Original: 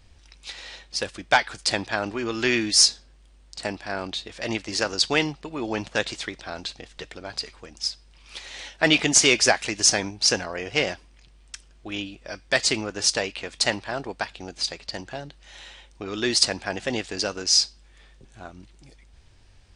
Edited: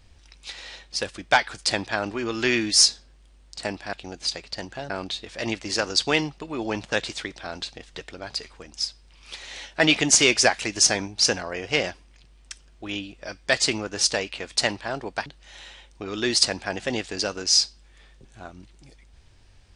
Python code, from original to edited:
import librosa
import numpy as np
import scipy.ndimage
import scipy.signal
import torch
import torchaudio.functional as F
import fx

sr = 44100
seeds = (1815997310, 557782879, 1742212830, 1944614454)

y = fx.edit(x, sr, fx.move(start_s=14.29, length_s=0.97, to_s=3.93), tone=tone)